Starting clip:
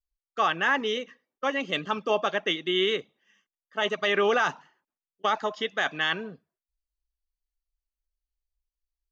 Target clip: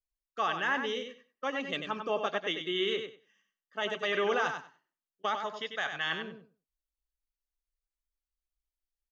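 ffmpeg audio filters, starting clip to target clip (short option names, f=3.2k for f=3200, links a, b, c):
-filter_complex "[0:a]asettb=1/sr,asplit=3[a][b][c];[a]atrim=end=1.784[d];[b]atrim=start=1.78:end=2.23,asetpts=PTS-STARTPTS,afade=t=in:d=0.004:c=qsin,afade=t=out:st=0.446:d=0.004:c=qsin,acrossover=split=3300[e][f];[f]acompressor=threshold=-49dB:ratio=4:attack=1:release=60[g];[e][g]amix=inputs=2:normalize=0[h];[c]atrim=start=2.226[i];[d][h]acrossfade=d=0.004:c1=hsin:c2=qsin[j];[j][i]acrossfade=d=0.004:c1=qsin:c2=hsin,asettb=1/sr,asplit=3[k][l][m];[k]atrim=end=5.364[n];[l]atrim=start=5.36:end=6.07,asetpts=PTS-STARTPTS,afade=t=in:d=0.004:c=qsin,afade=t=out:st=0.706:d=0.004:c=qsin,equalizer=f=310:t=o:w=0.91:g=-8.5[o];[m]atrim=start=6.066[p];[n][o]acrossfade=d=0.004:c1=hsin:c2=qsin[q];[q][p]acrossfade=d=0.004:c1=qsin:c2=hsin,aecho=1:1:95|190|285:0.447|0.0759|0.0129,volume=-6.5dB"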